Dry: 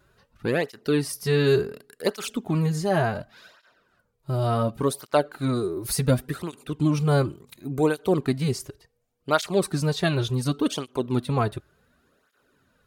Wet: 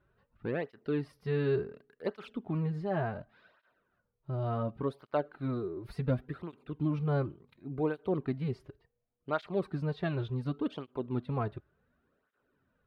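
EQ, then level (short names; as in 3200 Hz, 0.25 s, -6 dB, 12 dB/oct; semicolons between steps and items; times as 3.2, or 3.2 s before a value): air absorption 420 m; -8.5 dB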